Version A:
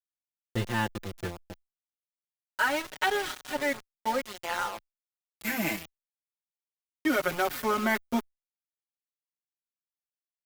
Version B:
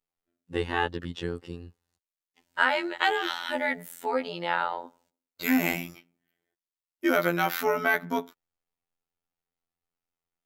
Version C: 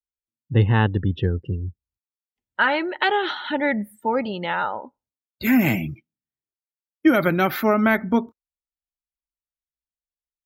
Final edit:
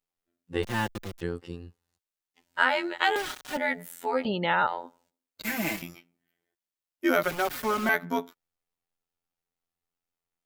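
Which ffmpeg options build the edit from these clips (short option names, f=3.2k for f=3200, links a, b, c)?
-filter_complex "[0:a]asplit=4[a][b][c][d];[1:a]asplit=6[e][f][g][h][i][j];[e]atrim=end=0.632[k];[a]atrim=start=0.628:end=1.212[l];[f]atrim=start=1.208:end=3.162[m];[b]atrim=start=3.158:end=3.572[n];[g]atrim=start=3.568:end=4.252[o];[2:a]atrim=start=4.248:end=4.672[p];[h]atrim=start=4.668:end=5.422[q];[c]atrim=start=5.418:end=5.822[r];[i]atrim=start=5.818:end=7.232[s];[d]atrim=start=7.228:end=7.892[t];[j]atrim=start=7.888[u];[k][l]acrossfade=d=0.004:c1=hsin:c2=hsin[v];[v][m]acrossfade=d=0.004:c1=hsin:c2=hsin[w];[w][n]acrossfade=d=0.004:c1=hsin:c2=hsin[x];[x][o]acrossfade=d=0.004:c1=hsin:c2=hsin[y];[y][p]acrossfade=d=0.004:c1=hsin:c2=hsin[z];[z][q]acrossfade=d=0.004:c1=hsin:c2=hsin[aa];[aa][r]acrossfade=d=0.004:c1=hsin:c2=hsin[ab];[ab][s]acrossfade=d=0.004:c1=hsin:c2=hsin[ac];[ac][t]acrossfade=d=0.004:c1=hsin:c2=hsin[ad];[ad][u]acrossfade=d=0.004:c1=hsin:c2=hsin"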